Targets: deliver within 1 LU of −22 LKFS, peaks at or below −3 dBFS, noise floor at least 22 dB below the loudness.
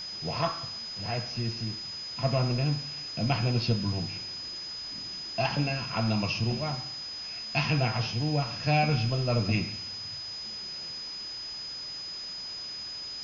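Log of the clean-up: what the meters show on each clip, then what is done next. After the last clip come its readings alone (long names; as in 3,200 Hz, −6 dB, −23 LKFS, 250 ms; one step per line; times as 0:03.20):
interfering tone 5,000 Hz; level of the tone −36 dBFS; background noise floor −39 dBFS; target noise floor −53 dBFS; integrated loudness −30.5 LKFS; sample peak −13.5 dBFS; target loudness −22.0 LKFS
→ notch filter 5,000 Hz, Q 30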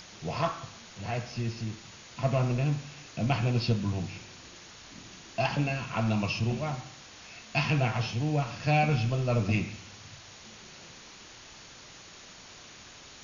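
interfering tone none found; background noise floor −50 dBFS; target noise floor −52 dBFS
→ noise reduction from a noise print 6 dB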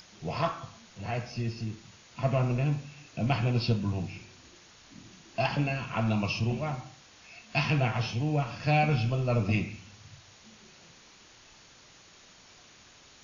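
background noise floor −56 dBFS; integrated loudness −30.0 LKFS; sample peak −13.5 dBFS; target loudness −22.0 LKFS
→ level +8 dB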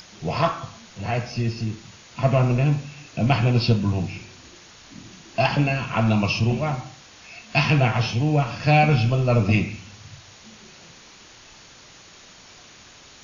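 integrated loudness −22.0 LKFS; sample peak −5.5 dBFS; background noise floor −48 dBFS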